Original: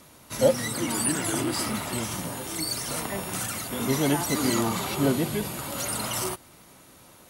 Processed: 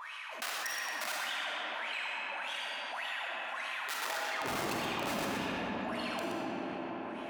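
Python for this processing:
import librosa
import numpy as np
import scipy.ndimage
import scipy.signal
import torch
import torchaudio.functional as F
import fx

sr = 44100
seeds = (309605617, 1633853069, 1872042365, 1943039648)

y = fx.high_shelf(x, sr, hz=5900.0, db=-4.5)
y = fx.hum_notches(y, sr, base_hz=60, count=7)
y = y + 0.48 * np.pad(y, (int(1.2 * sr / 1000.0), 0))[:len(y)]
y = fx.wah_lfo(y, sr, hz=1.7, low_hz=220.0, high_hz=3100.0, q=11.0)
y = (np.mod(10.0 ** (34.0 / 20.0) * y + 1.0, 2.0) - 1.0) / 10.0 ** (34.0 / 20.0)
y = fx.filter_sweep_highpass(y, sr, from_hz=1200.0, to_hz=66.0, start_s=4.0, end_s=4.5, q=0.71)
y = fx.wow_flutter(y, sr, seeds[0], rate_hz=2.1, depth_cents=130.0)
y = y + 10.0 ** (-8.0 / 20.0) * np.pad(y, (int(123 * sr / 1000.0), 0))[:len(y)]
y = fx.rev_freeverb(y, sr, rt60_s=3.2, hf_ratio=0.6, predelay_ms=5, drr_db=-3.0)
y = fx.env_flatten(y, sr, amount_pct=70)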